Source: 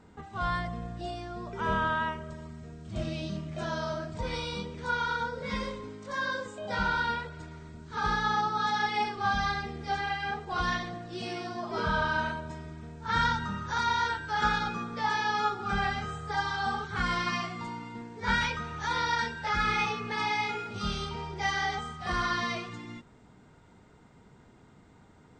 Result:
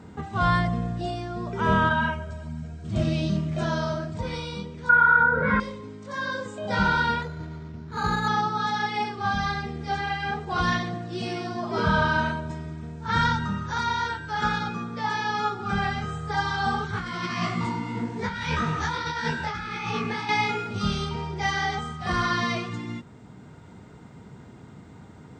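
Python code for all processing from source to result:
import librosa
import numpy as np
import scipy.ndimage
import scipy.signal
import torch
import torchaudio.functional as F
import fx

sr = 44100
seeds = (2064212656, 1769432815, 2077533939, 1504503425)

y = fx.chain(x, sr, fx.comb(ms=1.3, depth=0.56),
    fx.ensemble(), at=(1.89, 2.84))
y = fx.chain(y, sr, fx.lowpass_res(hz=1500.0, q=5.9),
    fx.env_flatten(amount_pct=50), at=(4.89, 5.6))
y = fx.chain(y, sr, fx.resample_bad(factor=8, down='filtered', up='hold'),
    fx.quant_companded(bits=6),
    fx.air_absorb(metres=150.0), at=(7.22, 8.28))
y = fx.chain(y, sr, fx.over_compress(threshold_db=-34.0, ratio=-1.0),
    fx.detune_double(cents=58), at=(16.91, 20.29))
y = scipy.signal.sosfilt(scipy.signal.butter(2, 110.0, 'highpass', fs=sr, output='sos'), y)
y = fx.low_shelf(y, sr, hz=170.0, db=12.0)
y = fx.rider(y, sr, range_db=10, speed_s=2.0)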